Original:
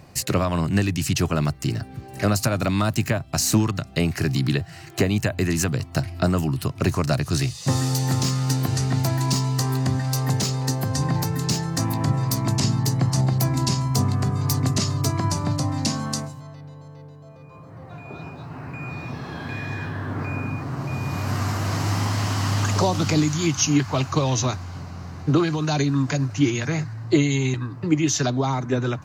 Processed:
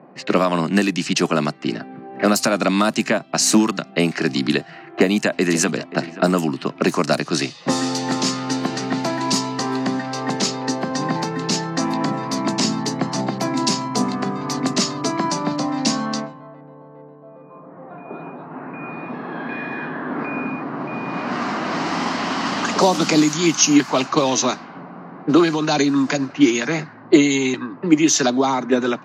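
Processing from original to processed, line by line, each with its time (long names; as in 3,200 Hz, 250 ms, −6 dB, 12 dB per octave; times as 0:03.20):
0:04.79–0:05.78: delay throw 530 ms, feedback 15%, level −15 dB
whole clip: low-pass that shuts in the quiet parts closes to 2,700 Hz, open at −16.5 dBFS; Butterworth high-pass 190 Hz 36 dB per octave; low-pass that shuts in the quiet parts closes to 1,100 Hz, open at −19 dBFS; level +6.5 dB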